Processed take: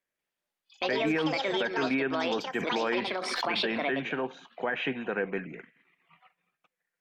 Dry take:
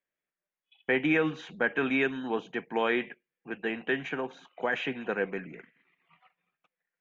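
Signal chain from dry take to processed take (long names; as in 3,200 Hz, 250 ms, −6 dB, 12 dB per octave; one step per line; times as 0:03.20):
treble cut that deepens with the level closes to 2,300 Hz, closed at −24 dBFS
delay with pitch and tempo change per echo 190 ms, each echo +6 semitones, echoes 2
brickwall limiter −22 dBFS, peak gain reduction 10.5 dB
0:02.58–0:03.88: background raised ahead of every attack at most 24 dB per second
level +2.5 dB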